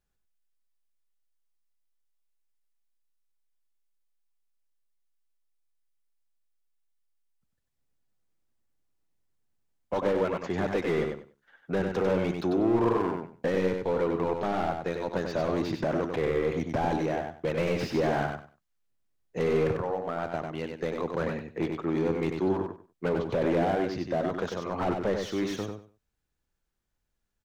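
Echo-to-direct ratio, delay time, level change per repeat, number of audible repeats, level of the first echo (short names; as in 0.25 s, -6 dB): -5.0 dB, 96 ms, -14.0 dB, 3, -5.0 dB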